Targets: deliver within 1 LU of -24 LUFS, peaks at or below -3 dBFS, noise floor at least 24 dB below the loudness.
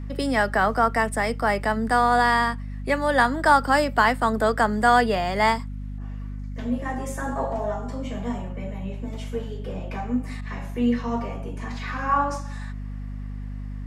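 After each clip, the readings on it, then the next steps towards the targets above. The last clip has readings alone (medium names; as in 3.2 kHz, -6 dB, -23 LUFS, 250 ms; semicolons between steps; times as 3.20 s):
hum 50 Hz; highest harmonic 250 Hz; hum level -30 dBFS; loudness -23.5 LUFS; peak level -4.0 dBFS; loudness target -24.0 LUFS
-> de-hum 50 Hz, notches 5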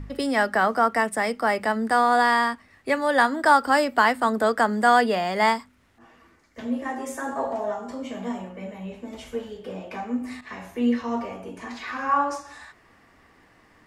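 hum not found; loudness -23.0 LUFS; peak level -4.0 dBFS; loudness target -24.0 LUFS
-> trim -1 dB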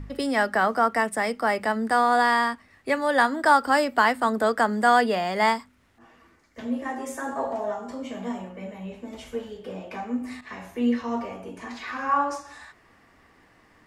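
loudness -24.0 LUFS; peak level -5.0 dBFS; noise floor -59 dBFS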